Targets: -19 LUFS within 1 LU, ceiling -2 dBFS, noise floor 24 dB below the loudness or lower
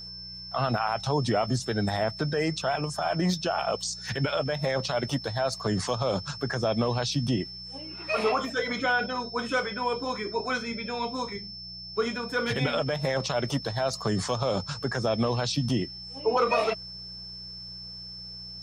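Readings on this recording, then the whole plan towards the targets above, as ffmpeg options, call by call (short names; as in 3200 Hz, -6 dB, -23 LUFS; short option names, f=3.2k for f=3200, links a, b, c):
hum 60 Hz; harmonics up to 180 Hz; hum level -45 dBFS; steady tone 5300 Hz; tone level -39 dBFS; loudness -29.0 LUFS; peak -12.5 dBFS; loudness target -19.0 LUFS
-> -af "bandreject=f=60:t=h:w=4,bandreject=f=120:t=h:w=4,bandreject=f=180:t=h:w=4"
-af "bandreject=f=5.3k:w=30"
-af "volume=10dB"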